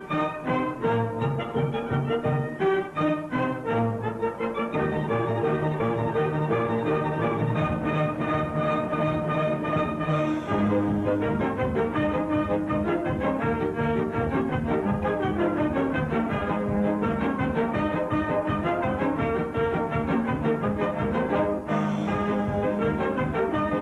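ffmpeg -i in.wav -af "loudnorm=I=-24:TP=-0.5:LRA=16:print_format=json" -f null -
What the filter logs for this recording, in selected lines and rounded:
"input_i" : "-25.9",
"input_tp" : "-12.6",
"input_lra" : "1.1",
"input_thresh" : "-35.9",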